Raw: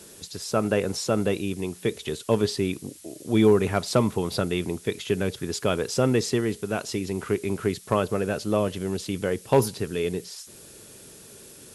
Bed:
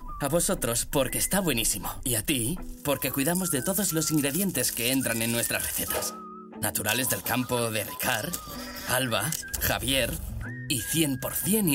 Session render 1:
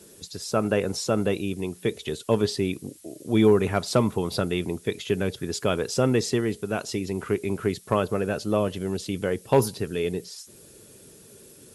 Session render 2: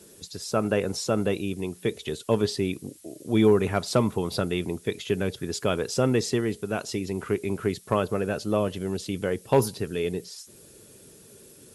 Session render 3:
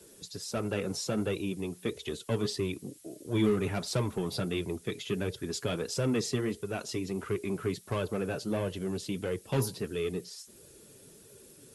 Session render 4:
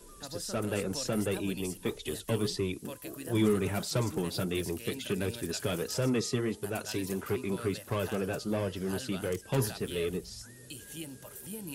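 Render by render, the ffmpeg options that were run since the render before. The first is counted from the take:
ffmpeg -i in.wav -af "afftdn=noise_reduction=6:noise_floor=-48" out.wav
ffmpeg -i in.wav -af "volume=-1dB" out.wav
ffmpeg -i in.wav -filter_complex "[0:a]acrossover=split=300|2200[link_01][link_02][link_03];[link_02]asoftclip=type=tanh:threshold=-27.5dB[link_04];[link_01][link_04][link_03]amix=inputs=3:normalize=0,flanger=delay=1.9:depth=5.4:regen=-34:speed=1.5:shape=sinusoidal" out.wav
ffmpeg -i in.wav -i bed.wav -filter_complex "[1:a]volume=-17.5dB[link_01];[0:a][link_01]amix=inputs=2:normalize=0" out.wav

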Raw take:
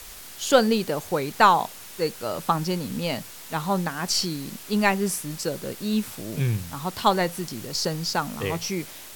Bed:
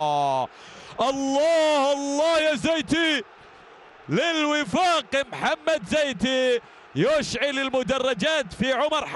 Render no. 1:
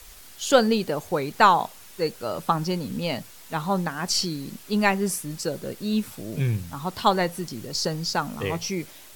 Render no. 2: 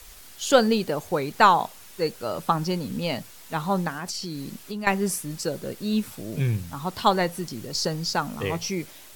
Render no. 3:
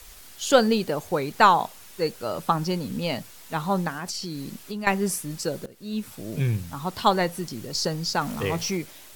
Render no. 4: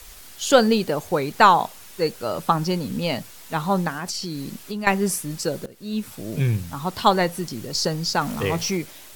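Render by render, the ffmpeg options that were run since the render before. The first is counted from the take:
ffmpeg -i in.wav -af "afftdn=noise_reduction=6:noise_floor=-42" out.wav
ffmpeg -i in.wav -filter_complex "[0:a]asettb=1/sr,asplit=3[link_01][link_02][link_03];[link_01]atrim=end=0.594[link_04];[link_02]atrim=start=0.59:end=1.16,asetpts=PTS-STARTPTS,afade=type=in:duration=0.004:curve=qsin,afade=type=out:start_time=0.566:duration=0.004:curve=qsin,acrusher=bits=9:mode=log:mix=0:aa=0.000001[link_05];[link_03]atrim=start=1.156[link_06];[link_04][link_05]acrossfade=duration=0.004:curve1=hsin:curve2=qsin[link_07];[link_07][link_06]acrossfade=duration=0.004:curve1=qsin:curve2=hsin,asettb=1/sr,asplit=3[link_08][link_09][link_10];[link_08]atrim=end=3.944[link_11];[link_09]atrim=start=3.94:end=4.87,asetpts=PTS-STARTPTS,afade=type=in:duration=0.004:curve=qsin,afade=type=out:start_time=0.926:duration=0.004:curve=qsin,acompressor=threshold=-28dB:ratio=12:attack=3.2:release=140:knee=1:detection=peak[link_12];[link_10]atrim=start=4.866[link_13];[link_11][link_12]acrossfade=duration=0.004:curve1=hsin:curve2=qsin[link_14];[link_14][link_13]acrossfade=duration=0.004:curve1=qsin:curve2=hsin" out.wav
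ffmpeg -i in.wav -filter_complex "[0:a]asettb=1/sr,asplit=3[link_01][link_02][link_03];[link_01]atrim=end=8.214[link_04];[link_02]atrim=start=8.21:end=8.77,asetpts=PTS-STARTPTS,afade=type=in:duration=0.004:curve=qsin,afade=type=out:start_time=0.556:duration=0.004:curve=qsin,aeval=exprs='val(0)+0.5*0.0178*sgn(val(0))':channel_layout=same[link_05];[link_03]atrim=start=8.766[link_06];[link_04][link_05]acrossfade=duration=0.004:curve1=hsin:curve2=qsin[link_07];[link_07][link_06]acrossfade=duration=0.004:curve1=qsin:curve2=hsin,asplit=2[link_08][link_09];[link_08]atrim=end=5.66,asetpts=PTS-STARTPTS,afade=type=out:start_time=5.656:duration=0.004:curve=hsin:silence=0.1[link_10];[link_09]atrim=start=5.66,asetpts=PTS-STARTPTS,afade=type=in:duration=0.62:silence=0.1[link_11];[link_10][link_11]concat=n=2:v=0:a=1" out.wav
ffmpeg -i in.wav -af "volume=3dB,alimiter=limit=-2dB:level=0:latency=1" out.wav

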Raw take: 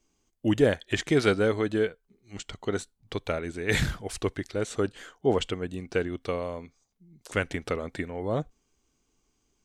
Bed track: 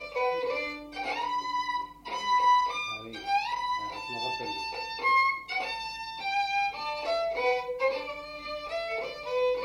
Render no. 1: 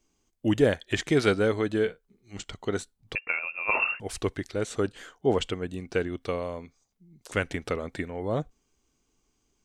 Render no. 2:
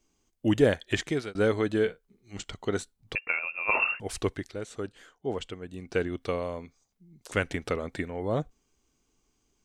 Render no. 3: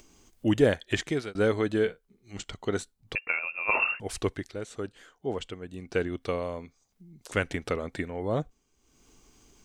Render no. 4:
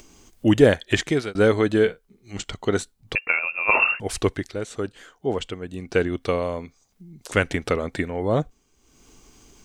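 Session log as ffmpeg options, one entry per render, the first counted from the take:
ffmpeg -i in.wav -filter_complex "[0:a]asettb=1/sr,asplit=3[link_01][link_02][link_03];[link_01]atrim=end=1.814[link_04];[link_02]atrim=start=1.81:end=2.44,asetpts=PTS-STARTPTS,afade=type=in:duration=0.004:curve=qsin,afade=type=out:start_time=0.626:duration=0.004:curve=qsin,asplit=2[link_05][link_06];[link_06]adelay=41,volume=-13.5dB[link_07];[link_05][link_07]amix=inputs=2:normalize=0,atrim=end_sample=27783[link_08];[link_03]atrim=start=2.436[link_09];[link_04][link_08]acrossfade=duration=0.004:curve1=hsin:curve2=qsin[link_10];[link_10][link_09]acrossfade=duration=0.004:curve1=qsin:curve2=hsin,asettb=1/sr,asplit=3[link_11][link_12][link_13];[link_11]atrim=end=3.154[link_14];[link_12]atrim=start=3.15:end=4,asetpts=PTS-STARTPTS,afade=type=in:duration=0.004:curve=qsin,afade=type=out:start_time=0.846:duration=0.004:curve=qsin,lowpass=frequency=2400:width_type=q:width=0.5098,lowpass=frequency=2400:width_type=q:width=0.6013,lowpass=frequency=2400:width_type=q:width=0.9,lowpass=frequency=2400:width_type=q:width=2.563,afreqshift=-2800[link_15];[link_13]atrim=start=3.996[link_16];[link_14][link_15]acrossfade=duration=0.004:curve1=hsin:curve2=qsin[link_17];[link_17][link_16]acrossfade=duration=0.004:curve1=qsin:curve2=hsin" out.wav
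ffmpeg -i in.wav -filter_complex "[0:a]asplit=4[link_01][link_02][link_03][link_04];[link_01]atrim=end=1.35,asetpts=PTS-STARTPTS,afade=type=out:start_time=0.94:duration=0.41[link_05];[link_02]atrim=start=1.35:end=4.62,asetpts=PTS-STARTPTS,afade=type=in:duration=0.004:curve=hsin,afade=type=out:start_time=2.91:duration=0.36:silence=0.398107[link_06];[link_03]atrim=start=4.62:end=5.66,asetpts=PTS-STARTPTS,volume=-8dB[link_07];[link_04]atrim=start=5.66,asetpts=PTS-STARTPTS,afade=type=in:duration=0.36:silence=0.398107[link_08];[link_05][link_06][link_07][link_08]concat=n=4:v=0:a=1" out.wav
ffmpeg -i in.wav -af "acompressor=mode=upward:threshold=-45dB:ratio=2.5" out.wav
ffmpeg -i in.wav -af "volume=7dB" out.wav

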